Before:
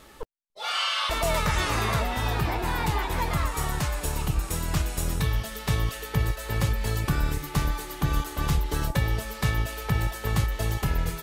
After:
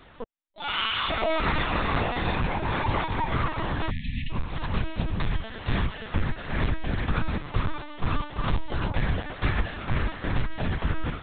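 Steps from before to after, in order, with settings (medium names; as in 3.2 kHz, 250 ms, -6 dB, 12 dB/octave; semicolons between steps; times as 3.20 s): 3.60–4.69 s: frequency shift -120 Hz; LPC vocoder at 8 kHz pitch kept; 3.91–4.30 s: spectral selection erased 260–1700 Hz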